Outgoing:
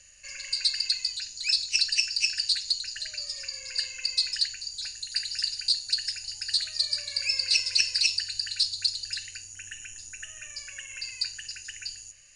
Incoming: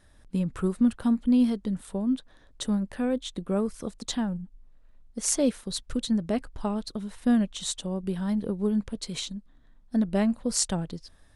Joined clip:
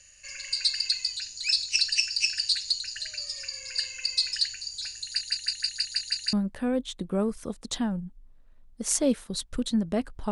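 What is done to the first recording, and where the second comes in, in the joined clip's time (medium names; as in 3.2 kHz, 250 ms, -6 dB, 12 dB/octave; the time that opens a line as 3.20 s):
outgoing
5.05 s: stutter in place 0.16 s, 8 plays
6.33 s: go over to incoming from 2.70 s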